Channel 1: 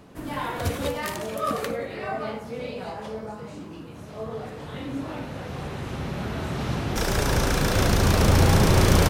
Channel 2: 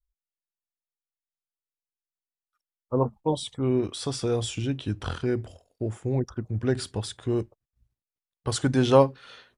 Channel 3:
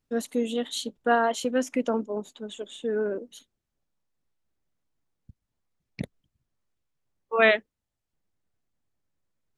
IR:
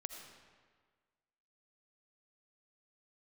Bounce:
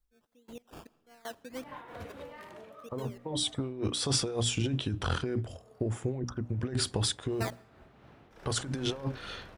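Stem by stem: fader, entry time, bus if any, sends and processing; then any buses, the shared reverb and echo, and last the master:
−14.0 dB, 1.35 s, send −8.5 dB, bass and treble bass −6 dB, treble −13 dB; automatic ducking −22 dB, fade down 0.30 s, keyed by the second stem
+2.0 dB, 0.00 s, send −23.5 dB, mains-hum notches 60/120/180/240/300 Hz; compressor whose output falls as the input rises −31 dBFS, ratio −1
−13.5 dB, 0.00 s, send −13.5 dB, high-shelf EQ 8,600 Hz +10 dB; sample-and-hold swept by an LFO 17×, swing 60% 1.6 Hz; gate pattern "x....x.x" 156 BPM −24 dB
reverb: on, RT60 1.6 s, pre-delay 40 ms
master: amplitude modulation by smooth noise, depth 65%

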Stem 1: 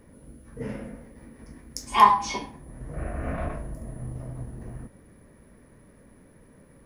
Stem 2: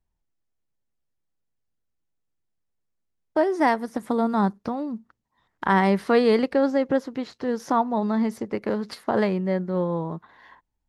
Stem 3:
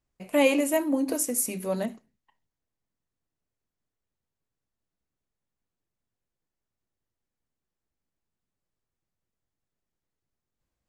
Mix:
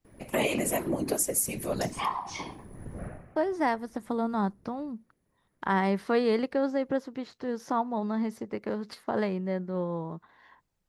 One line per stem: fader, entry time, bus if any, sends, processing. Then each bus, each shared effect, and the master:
−1.0 dB, 0.05 s, bus A, no send, downward compressor 2 to 1, threshold −34 dBFS, peak gain reduction 13.5 dB; automatic ducking −22 dB, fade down 0.30 s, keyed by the second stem
−6.5 dB, 0.00 s, no bus, no send, no processing
−2.0 dB, 0.00 s, bus A, no send, harmonic and percussive parts rebalanced percussive +7 dB
bus A: 0.0 dB, random phases in short frames; downward compressor 2 to 1, threshold −27 dBFS, peak gain reduction 6 dB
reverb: not used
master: no processing

